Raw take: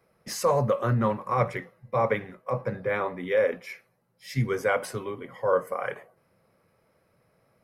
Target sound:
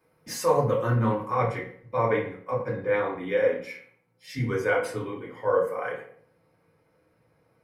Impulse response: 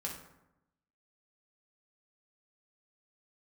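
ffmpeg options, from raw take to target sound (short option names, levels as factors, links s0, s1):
-filter_complex "[0:a]asetnsamples=n=441:p=0,asendcmd='1.31 highshelf g -7',highshelf=f=12000:g=5[s0];[1:a]atrim=start_sample=2205,asetrate=79380,aresample=44100[s1];[s0][s1]afir=irnorm=-1:irlink=0,volume=1.68"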